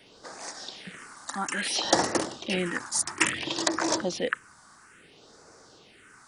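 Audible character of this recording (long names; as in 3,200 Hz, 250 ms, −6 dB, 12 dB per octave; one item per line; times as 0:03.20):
phaser sweep stages 4, 0.59 Hz, lowest notch 440–3,000 Hz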